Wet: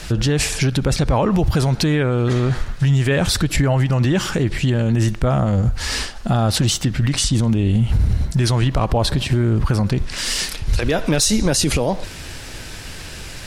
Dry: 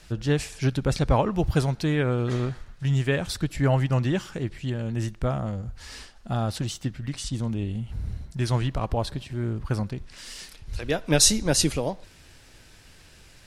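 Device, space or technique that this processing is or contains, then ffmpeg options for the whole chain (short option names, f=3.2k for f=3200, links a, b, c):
loud club master: -af "acompressor=threshold=-25dB:ratio=3,asoftclip=type=hard:threshold=-17.5dB,alimiter=level_in=26.5dB:limit=-1dB:release=50:level=0:latency=1,volume=-8dB"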